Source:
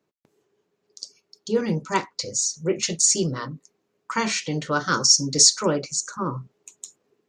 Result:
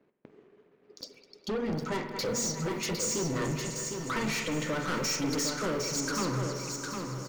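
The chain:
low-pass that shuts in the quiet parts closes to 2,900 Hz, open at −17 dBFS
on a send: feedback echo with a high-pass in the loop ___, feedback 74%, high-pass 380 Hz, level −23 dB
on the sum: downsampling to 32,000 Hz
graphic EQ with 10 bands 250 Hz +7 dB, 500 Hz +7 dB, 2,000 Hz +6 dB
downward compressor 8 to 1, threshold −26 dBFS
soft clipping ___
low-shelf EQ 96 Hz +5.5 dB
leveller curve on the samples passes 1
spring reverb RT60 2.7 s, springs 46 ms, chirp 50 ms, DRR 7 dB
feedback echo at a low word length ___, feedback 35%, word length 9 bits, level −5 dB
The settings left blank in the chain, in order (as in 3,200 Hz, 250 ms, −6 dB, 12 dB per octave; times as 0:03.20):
206 ms, −30 dBFS, 757 ms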